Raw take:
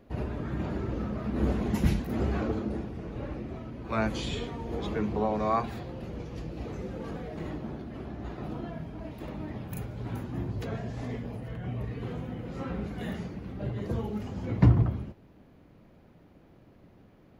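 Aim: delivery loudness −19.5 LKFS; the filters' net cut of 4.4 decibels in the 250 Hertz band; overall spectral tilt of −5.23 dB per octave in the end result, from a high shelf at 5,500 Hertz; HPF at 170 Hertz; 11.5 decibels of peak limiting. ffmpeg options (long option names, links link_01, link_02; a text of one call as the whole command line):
ffmpeg -i in.wav -af "highpass=170,equalizer=frequency=250:width_type=o:gain=-4,highshelf=frequency=5500:gain=7,volume=19dB,alimiter=limit=-5.5dB:level=0:latency=1" out.wav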